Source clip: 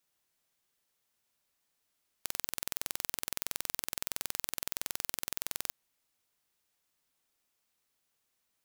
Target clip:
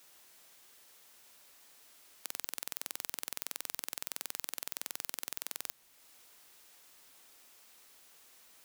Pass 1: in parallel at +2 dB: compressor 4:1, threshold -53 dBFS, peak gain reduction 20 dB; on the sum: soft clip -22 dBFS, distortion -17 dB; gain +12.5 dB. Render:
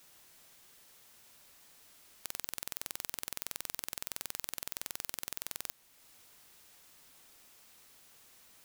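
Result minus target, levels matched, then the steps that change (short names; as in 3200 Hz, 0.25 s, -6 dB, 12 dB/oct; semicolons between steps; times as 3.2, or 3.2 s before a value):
250 Hz band +3.0 dB
add after compressor: HPF 220 Hz 12 dB/oct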